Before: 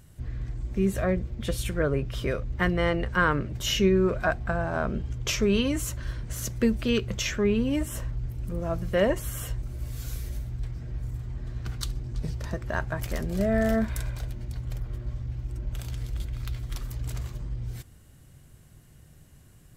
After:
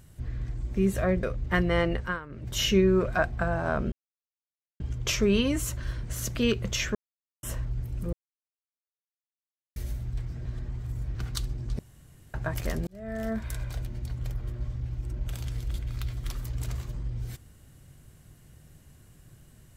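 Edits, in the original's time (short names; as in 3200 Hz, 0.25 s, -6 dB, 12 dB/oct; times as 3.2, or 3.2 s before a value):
1.23–2.31 cut
3.03–3.62 dip -18.5 dB, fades 0.25 s
5 insert silence 0.88 s
6.55–6.81 cut
7.41–7.89 mute
8.59–10.22 mute
10.91–11.61 reverse
12.25–12.8 room tone
13.33–14.27 fade in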